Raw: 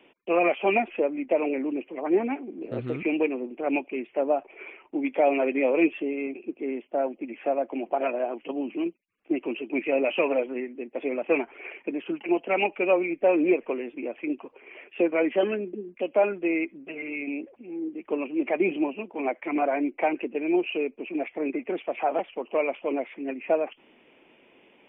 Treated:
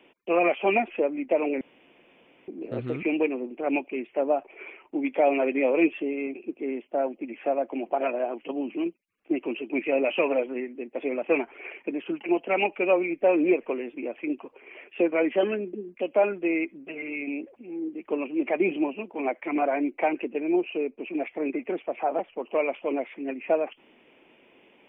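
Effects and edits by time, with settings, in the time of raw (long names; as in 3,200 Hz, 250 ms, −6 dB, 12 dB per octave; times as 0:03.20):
0:01.61–0:02.48: fill with room tone
0:20.40–0:20.98: high-shelf EQ 2,300 Hz −10 dB
0:21.74–0:22.38: low-pass filter 1,700 Hz → 1,200 Hz 6 dB per octave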